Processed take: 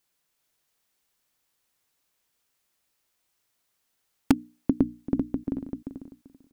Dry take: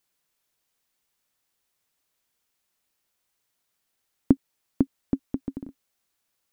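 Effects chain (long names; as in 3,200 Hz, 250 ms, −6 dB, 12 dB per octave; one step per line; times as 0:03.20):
0:04.31–0:05.44: mains-hum notches 60/120/180/240/300 Hz
repeating echo 389 ms, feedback 18%, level −5.5 dB
in parallel at −7 dB: wrap-around overflow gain 8 dB
on the sum: level −2.5 dB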